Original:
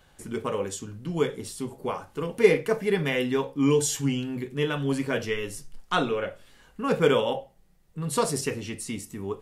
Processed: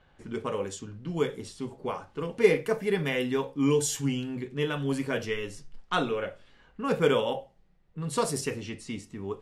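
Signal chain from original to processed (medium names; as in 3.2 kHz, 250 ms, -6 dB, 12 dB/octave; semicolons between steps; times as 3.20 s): level-controlled noise filter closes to 2.8 kHz, open at -23 dBFS; trim -2.5 dB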